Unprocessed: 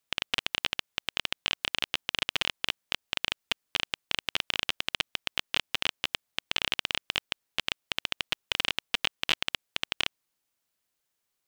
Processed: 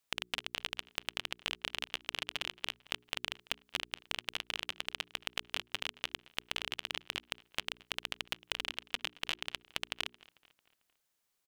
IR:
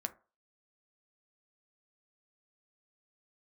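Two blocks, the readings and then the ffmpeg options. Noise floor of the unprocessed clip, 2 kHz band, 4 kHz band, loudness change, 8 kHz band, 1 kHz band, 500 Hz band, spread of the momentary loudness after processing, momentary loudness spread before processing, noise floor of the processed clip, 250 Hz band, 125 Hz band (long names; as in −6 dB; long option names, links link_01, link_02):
−82 dBFS, −7.5 dB, −8.5 dB, −8.0 dB, −5.5 dB, −6.5 dB, −6.5 dB, 2 LU, 4 LU, −81 dBFS, −7.0 dB, −7.0 dB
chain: -filter_complex "[0:a]bandreject=frequency=60:width_type=h:width=6,bandreject=frequency=120:width_type=h:width=6,bandreject=frequency=180:width_type=h:width=6,bandreject=frequency=240:width_type=h:width=6,bandreject=frequency=300:width_type=h:width=6,bandreject=frequency=360:width_type=h:width=6,bandreject=frequency=420:width_type=h:width=6,acompressor=threshold=-32dB:ratio=6,asplit=2[link_01][link_02];[link_02]adelay=223,lowpass=frequency=5000:poles=1,volume=-22dB,asplit=2[link_03][link_04];[link_04]adelay=223,lowpass=frequency=5000:poles=1,volume=0.52,asplit=2[link_05][link_06];[link_06]adelay=223,lowpass=frequency=5000:poles=1,volume=0.52,asplit=2[link_07][link_08];[link_08]adelay=223,lowpass=frequency=5000:poles=1,volume=0.52[link_09];[link_03][link_05][link_07][link_09]amix=inputs=4:normalize=0[link_10];[link_01][link_10]amix=inputs=2:normalize=0"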